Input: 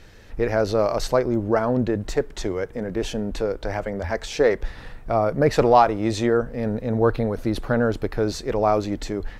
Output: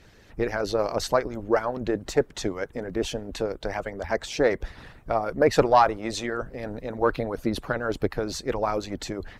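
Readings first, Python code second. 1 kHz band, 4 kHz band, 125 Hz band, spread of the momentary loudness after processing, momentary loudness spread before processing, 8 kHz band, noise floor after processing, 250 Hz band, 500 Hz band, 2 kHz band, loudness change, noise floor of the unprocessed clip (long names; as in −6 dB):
−2.5 dB, 0.0 dB, −8.0 dB, 11 LU, 9 LU, 0.0 dB, −53 dBFS, −6.0 dB, −4.0 dB, −1.0 dB, −4.0 dB, −42 dBFS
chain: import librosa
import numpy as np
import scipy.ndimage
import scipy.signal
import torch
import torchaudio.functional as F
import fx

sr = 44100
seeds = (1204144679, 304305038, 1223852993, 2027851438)

y = fx.hpss(x, sr, part='harmonic', gain_db=-18)
y = fx.cheby_harmonics(y, sr, harmonics=(2,), levels_db=(-22,), full_scale_db=-6.5)
y = y * librosa.db_to_amplitude(1.0)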